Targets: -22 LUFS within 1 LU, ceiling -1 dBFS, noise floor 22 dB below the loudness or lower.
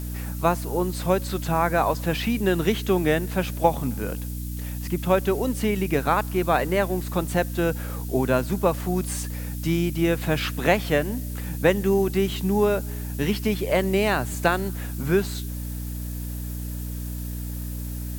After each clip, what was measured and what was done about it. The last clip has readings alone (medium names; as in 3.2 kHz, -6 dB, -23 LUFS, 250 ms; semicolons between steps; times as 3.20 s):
hum 60 Hz; highest harmonic 300 Hz; hum level -29 dBFS; noise floor -31 dBFS; noise floor target -47 dBFS; loudness -25.0 LUFS; peak level -4.5 dBFS; loudness target -22.0 LUFS
-> hum notches 60/120/180/240/300 Hz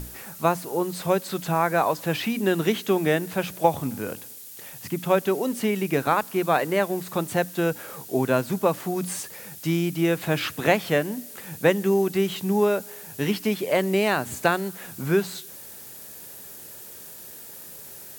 hum not found; noise floor -42 dBFS; noise floor target -47 dBFS
-> noise print and reduce 6 dB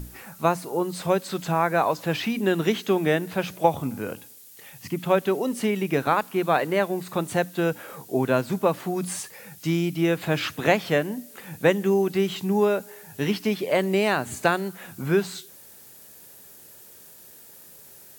noise floor -48 dBFS; loudness -25.0 LUFS; peak level -4.5 dBFS; loudness target -22.0 LUFS
-> trim +3 dB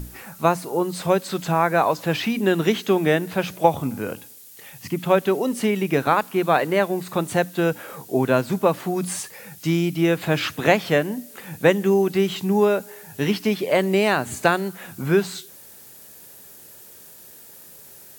loudness -22.0 LUFS; peak level -1.5 dBFS; noise floor -45 dBFS